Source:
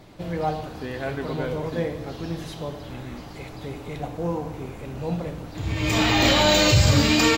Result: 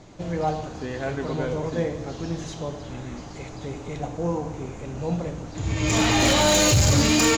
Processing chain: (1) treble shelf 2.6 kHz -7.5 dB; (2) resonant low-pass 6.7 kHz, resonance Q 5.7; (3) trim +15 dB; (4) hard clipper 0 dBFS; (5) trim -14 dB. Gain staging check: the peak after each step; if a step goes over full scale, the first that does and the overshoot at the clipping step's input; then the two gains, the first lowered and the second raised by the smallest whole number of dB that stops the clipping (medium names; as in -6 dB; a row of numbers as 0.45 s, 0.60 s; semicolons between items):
-7.5 dBFS, -6.0 dBFS, +9.0 dBFS, 0.0 dBFS, -14.0 dBFS; step 3, 9.0 dB; step 3 +6 dB, step 5 -5 dB